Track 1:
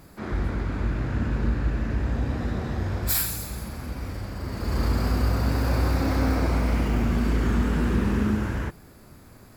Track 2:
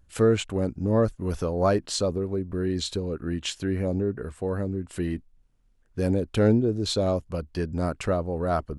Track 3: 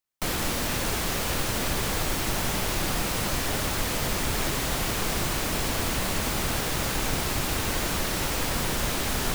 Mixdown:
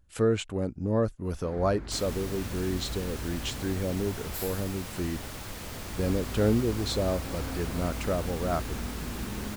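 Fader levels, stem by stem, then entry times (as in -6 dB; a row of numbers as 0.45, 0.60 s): -13.5, -4.0, -13.0 dB; 1.25, 0.00, 1.70 s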